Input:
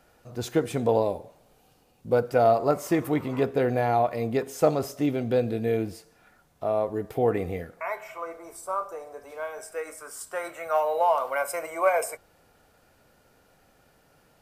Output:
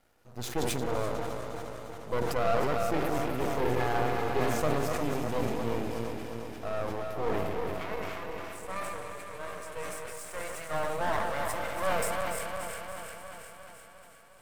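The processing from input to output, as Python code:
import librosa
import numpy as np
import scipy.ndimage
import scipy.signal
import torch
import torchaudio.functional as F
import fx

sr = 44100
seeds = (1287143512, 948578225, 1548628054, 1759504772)

y = fx.reverse_delay_fb(x, sr, ms=177, feedback_pct=78, wet_db=-5.5)
y = fx.comb(y, sr, ms=2.4, depth=0.78, at=(3.6, 4.4))
y = np.maximum(y, 0.0)
y = fx.echo_wet_highpass(y, sr, ms=285, feedback_pct=66, hz=1800.0, wet_db=-7)
y = 10.0 ** (-9.5 / 20.0) * np.tanh(y / 10.0 ** (-9.5 / 20.0))
y = fx.sustainer(y, sr, db_per_s=23.0)
y = F.gain(torch.from_numpy(y), -4.5).numpy()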